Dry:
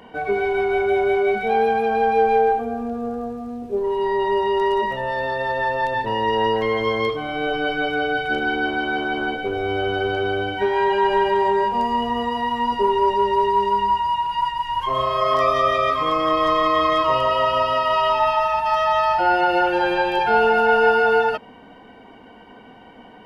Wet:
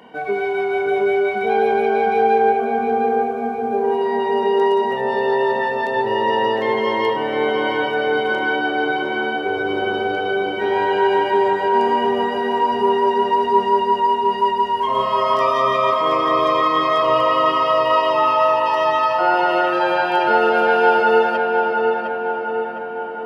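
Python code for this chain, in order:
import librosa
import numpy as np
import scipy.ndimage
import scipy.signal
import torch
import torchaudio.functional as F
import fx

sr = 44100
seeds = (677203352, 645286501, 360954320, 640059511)

p1 = scipy.signal.sosfilt(scipy.signal.butter(2, 150.0, 'highpass', fs=sr, output='sos'), x)
y = p1 + fx.echo_filtered(p1, sr, ms=708, feedback_pct=63, hz=2300.0, wet_db=-3.0, dry=0)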